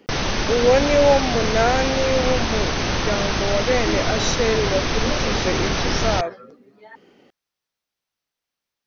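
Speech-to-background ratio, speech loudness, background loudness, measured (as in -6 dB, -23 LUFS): 0.5 dB, -22.0 LUFS, -22.5 LUFS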